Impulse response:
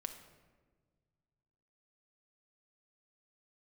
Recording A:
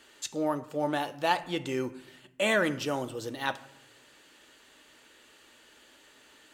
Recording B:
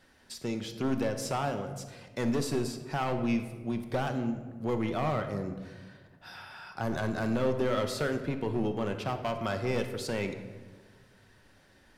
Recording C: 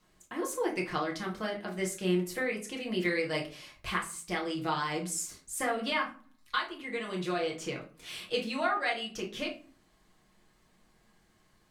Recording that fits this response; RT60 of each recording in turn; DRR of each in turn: B; non-exponential decay, 1.5 s, 0.40 s; 10.0, 6.0, −2.0 decibels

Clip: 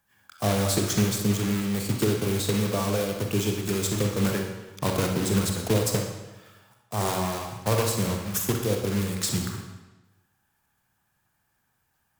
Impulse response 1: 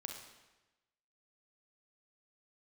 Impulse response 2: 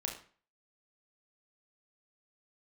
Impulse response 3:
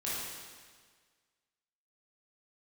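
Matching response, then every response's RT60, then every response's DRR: 1; 1.1, 0.45, 1.6 seconds; 2.5, 0.5, −9.0 decibels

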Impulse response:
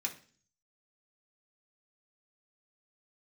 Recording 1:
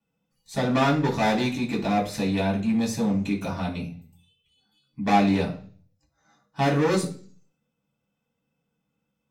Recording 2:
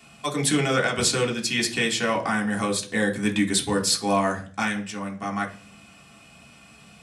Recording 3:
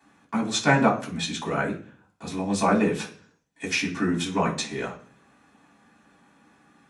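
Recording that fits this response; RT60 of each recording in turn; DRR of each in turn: 2; 0.45, 0.45, 0.45 seconds; −17.5, −1.0, −10.0 decibels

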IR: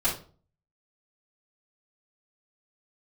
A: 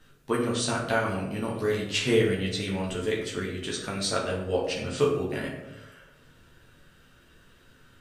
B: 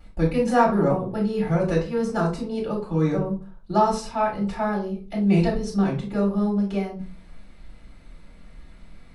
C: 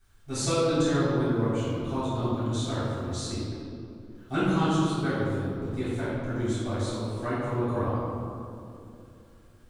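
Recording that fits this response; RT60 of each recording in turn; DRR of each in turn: B; 1.0, 0.40, 2.7 seconds; −4.5, −10.5, −14.0 decibels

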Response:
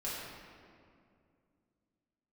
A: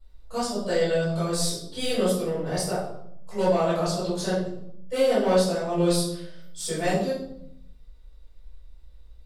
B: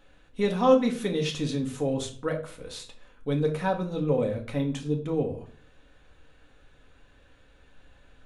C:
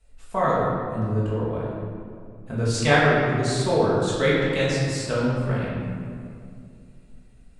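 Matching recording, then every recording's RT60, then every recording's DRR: C; 0.70, 0.50, 2.3 seconds; −14.0, 1.5, −8.5 decibels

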